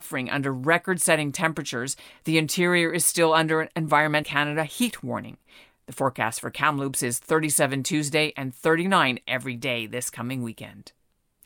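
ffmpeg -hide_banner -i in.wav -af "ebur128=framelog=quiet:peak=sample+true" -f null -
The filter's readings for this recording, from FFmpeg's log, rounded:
Integrated loudness:
  I:         -23.8 LUFS
  Threshold: -34.3 LUFS
Loudness range:
  LRA:         3.8 LU
  Threshold: -43.9 LUFS
  LRA low:   -26.1 LUFS
  LRA high:  -22.4 LUFS
Sample peak:
  Peak:       -4.7 dBFS
True peak:
  Peak:       -4.7 dBFS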